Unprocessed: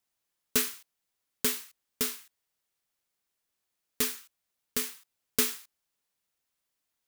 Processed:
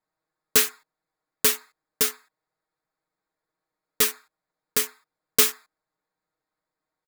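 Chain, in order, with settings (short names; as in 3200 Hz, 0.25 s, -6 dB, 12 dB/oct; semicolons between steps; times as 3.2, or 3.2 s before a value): Wiener smoothing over 15 samples; low shelf 240 Hz -6.5 dB; comb 6.4 ms, depth 74%; gain +7 dB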